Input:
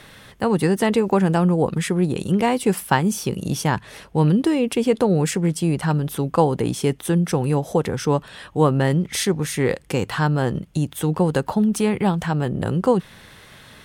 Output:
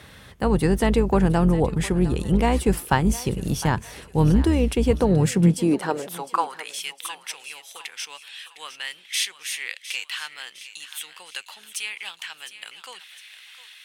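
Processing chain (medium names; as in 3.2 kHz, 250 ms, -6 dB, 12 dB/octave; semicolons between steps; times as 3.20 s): octave divider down 2 oct, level -4 dB; high-pass sweep 62 Hz -> 2.6 kHz, 4.98–6.78 s; thinning echo 708 ms, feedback 45%, high-pass 870 Hz, level -13 dB; trim -2.5 dB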